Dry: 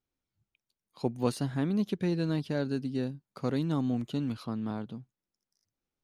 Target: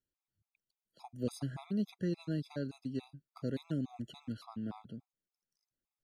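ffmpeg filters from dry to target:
-filter_complex "[0:a]acrossover=split=410|3000[a][b][c];[b]acompressor=threshold=-38dB:ratio=3[d];[a][d][c]amix=inputs=3:normalize=0,afftfilt=real='re*gt(sin(2*PI*3.5*pts/sr)*(1-2*mod(floor(b*sr/1024/670),2)),0)':imag='im*gt(sin(2*PI*3.5*pts/sr)*(1-2*mod(floor(b*sr/1024/670),2)),0)':win_size=1024:overlap=0.75,volume=-4.5dB"

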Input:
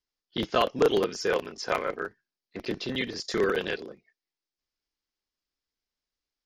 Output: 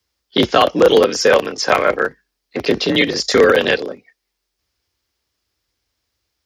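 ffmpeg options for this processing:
-af "afreqshift=45,alimiter=level_in=16.5dB:limit=-1dB:release=50:level=0:latency=1,volume=-1dB"

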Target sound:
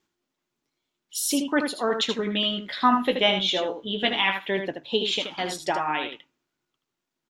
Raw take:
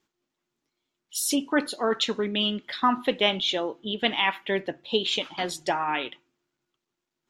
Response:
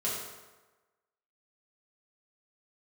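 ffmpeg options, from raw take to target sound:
-filter_complex "[0:a]asettb=1/sr,asplit=3[a][b][c];[a]atrim=end=2.184[d];[b]atrim=start=2.18:end=4.44,asetpts=PTS-STARTPTS,afade=t=in:d=0.004:c=qsin,afade=t=out:st=2.256:d=0.004:c=qsin,asplit=2[e][f];[f]adelay=16,volume=-6.5dB[g];[e][g]amix=inputs=2:normalize=0,atrim=end_sample=99666[h];[c]atrim=start=4.436[i];[d][h]acrossfade=d=0.004:c1=hsin:c2=qsin[j];[j][i]acrossfade=d=0.004:c1=qsin:c2=hsin,aecho=1:1:78:0.447"

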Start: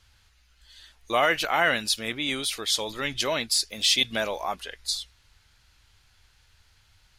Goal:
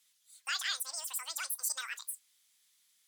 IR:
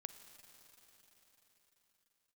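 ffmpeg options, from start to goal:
-filter_complex "[0:a]asplit=2[a][b];[b]acompressor=threshold=-32dB:ratio=6,volume=3dB[c];[a][c]amix=inputs=2:normalize=0,highpass=560[d];[1:a]atrim=start_sample=2205,atrim=end_sample=4410[e];[d][e]afir=irnorm=-1:irlink=0,asetrate=103194,aresample=44100,volume=-8.5dB"

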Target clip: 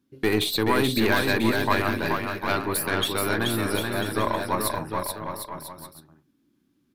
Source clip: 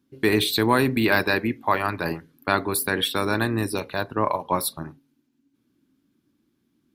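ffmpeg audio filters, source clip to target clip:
-af "aeval=exprs='(tanh(3.98*val(0)+0.5)-tanh(0.5))/3.98':c=same,aecho=1:1:430|752.5|994.4|1176|1312:0.631|0.398|0.251|0.158|0.1"

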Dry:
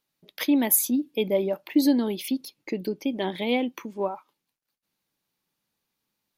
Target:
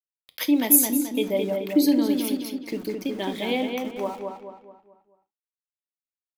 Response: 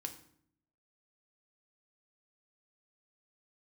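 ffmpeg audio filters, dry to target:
-filter_complex "[0:a]highshelf=f=4.2k:g=6.5,aeval=exprs='val(0)*gte(abs(val(0)),0.0106)':c=same,asplit=2[a][b];[b]adelay=216,lowpass=f=3.1k:p=1,volume=-4dB,asplit=2[c][d];[d]adelay=216,lowpass=f=3.1k:p=1,volume=0.43,asplit=2[e][f];[f]adelay=216,lowpass=f=3.1k:p=1,volume=0.43,asplit=2[g][h];[h]adelay=216,lowpass=f=3.1k:p=1,volume=0.43,asplit=2[i][j];[j]adelay=216,lowpass=f=3.1k:p=1,volume=0.43[k];[a][c][e][g][i][k]amix=inputs=6:normalize=0,asplit=2[l][m];[1:a]atrim=start_sample=2205,atrim=end_sample=3528[n];[m][n]afir=irnorm=-1:irlink=0,volume=6.5dB[o];[l][o]amix=inputs=2:normalize=0,volume=-9.5dB"

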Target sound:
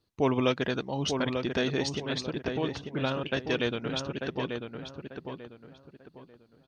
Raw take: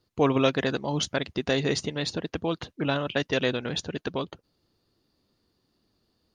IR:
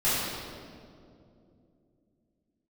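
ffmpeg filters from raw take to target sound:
-filter_complex "[0:a]asetrate=41895,aresample=44100,asplit=2[a][b];[b]adelay=892,lowpass=f=2.2k:p=1,volume=-5.5dB,asplit=2[c][d];[d]adelay=892,lowpass=f=2.2k:p=1,volume=0.31,asplit=2[e][f];[f]adelay=892,lowpass=f=2.2k:p=1,volume=0.31,asplit=2[g][h];[h]adelay=892,lowpass=f=2.2k:p=1,volume=0.31[i];[a][c][e][g][i]amix=inputs=5:normalize=0,volume=-3.5dB"

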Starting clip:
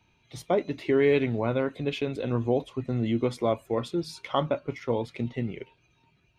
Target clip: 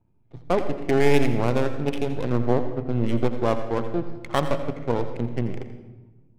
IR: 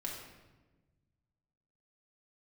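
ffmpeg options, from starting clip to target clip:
-filter_complex "[0:a]aeval=exprs='if(lt(val(0),0),0.251*val(0),val(0))':c=same,adynamicsmooth=sensitivity=7:basefreq=530,asplit=2[a][b];[1:a]atrim=start_sample=2205,adelay=84[c];[b][c]afir=irnorm=-1:irlink=0,volume=-9dB[d];[a][d]amix=inputs=2:normalize=0,volume=5dB"

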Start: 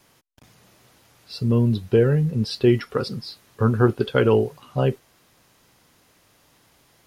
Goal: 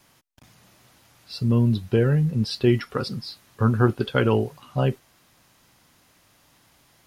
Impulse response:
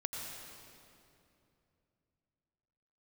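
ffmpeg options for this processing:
-af "equalizer=f=440:t=o:w=0.57:g=-5.5"

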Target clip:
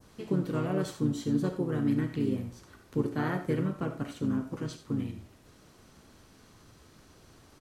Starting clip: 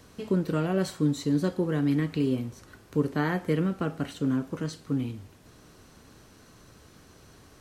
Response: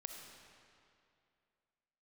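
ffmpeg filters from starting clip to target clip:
-filter_complex "[0:a]asplit=2[a][b];[b]asetrate=35002,aresample=44100,atempo=1.25992,volume=-4dB[c];[a][c]amix=inputs=2:normalize=0,adynamicequalizer=threshold=0.00398:dfrequency=3300:dqfactor=0.77:tfrequency=3300:tqfactor=0.77:attack=5:release=100:ratio=0.375:range=2:mode=cutabove:tftype=bell[d];[1:a]atrim=start_sample=2205,atrim=end_sample=4410[e];[d][e]afir=irnorm=-1:irlink=0"

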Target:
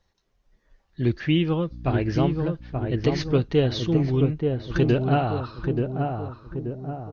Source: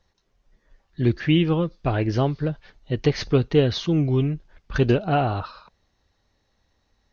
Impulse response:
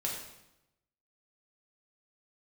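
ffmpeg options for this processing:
-filter_complex "[0:a]asettb=1/sr,asplit=3[a][b][c];[a]atrim=end=1.714[d];[b]atrim=start=1.71:end=2.44,asetpts=PTS-STARTPTS,afade=t=in:d=0.004:c=qsin,afade=t=out:st=0.726:d=0.004:c=qsin,aeval=exprs='val(0)+0.02*(sin(2*PI*60*n/s)+sin(2*PI*2*60*n/s)/2+sin(2*PI*3*60*n/s)/3+sin(2*PI*4*60*n/s)/4+sin(2*PI*5*60*n/s)/5)':c=same[e];[c]atrim=start=2.436[f];[d][e]acrossfade=d=0.004:c1=hsin:c2=qsin[g];[g][f]acrossfade=d=0.004:c1=qsin:c2=hsin,asplit=2[h][i];[i]adelay=881,lowpass=f=1k:p=1,volume=-3.5dB,asplit=2[j][k];[k]adelay=881,lowpass=f=1k:p=1,volume=0.52,asplit=2[l][m];[m]adelay=881,lowpass=f=1k:p=1,volume=0.52,asplit=2[n][o];[o]adelay=881,lowpass=f=1k:p=1,volume=0.52,asplit=2[p][q];[q]adelay=881,lowpass=f=1k:p=1,volume=0.52,asplit=2[r][s];[s]adelay=881,lowpass=f=1k:p=1,volume=0.52,asplit=2[t][u];[u]adelay=881,lowpass=f=1k:p=1,volume=0.52[v];[h][j][l][n][p][r][t][v]amix=inputs=8:normalize=0,volume=-2.5dB"

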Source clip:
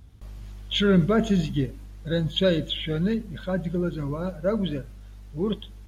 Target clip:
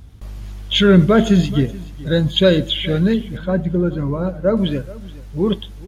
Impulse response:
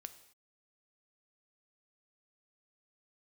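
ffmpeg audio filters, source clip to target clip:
-filter_complex "[0:a]asettb=1/sr,asplit=3[a][b][c];[a]atrim=end=3.374[d];[b]atrim=start=3.37:end=4.57,asetpts=PTS-STARTPTS,afade=t=in:d=0.004:c=qsin,afade=t=out:st=1.196:d=0.004:c=qsin,highshelf=f=2.3k:g=-10.5[e];[c]atrim=start=4.566[f];[d][e]acrossfade=d=0.004:c1=hsin:c2=qsin[g];[g][f]acrossfade=d=0.004:c1=qsin:c2=hsin,asplit=2[h][i];[i]aecho=0:1:427:0.106[j];[h][j]amix=inputs=2:normalize=0,volume=8.5dB"

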